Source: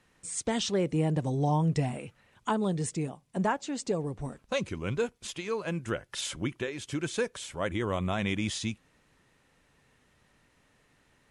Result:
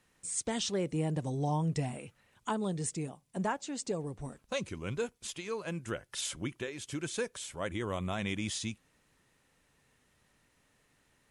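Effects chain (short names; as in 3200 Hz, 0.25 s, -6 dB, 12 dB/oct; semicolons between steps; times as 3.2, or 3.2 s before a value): high shelf 6500 Hz +8.5 dB; gain -5 dB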